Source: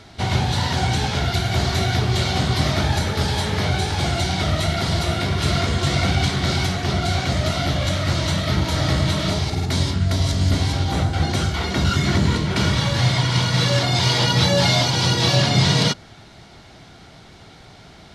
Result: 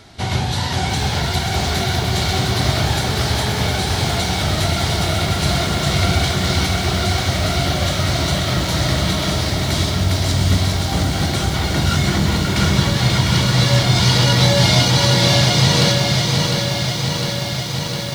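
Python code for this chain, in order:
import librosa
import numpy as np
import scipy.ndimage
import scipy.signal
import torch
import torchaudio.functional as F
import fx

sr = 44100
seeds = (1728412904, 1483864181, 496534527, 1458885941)

y = fx.high_shelf(x, sr, hz=8000.0, db=7.5)
y = y + 10.0 ** (-5.5 / 20.0) * np.pad(y, (int(537 * sr / 1000.0), 0))[:len(y)]
y = fx.echo_crushed(y, sr, ms=705, feedback_pct=80, bits=6, wet_db=-6)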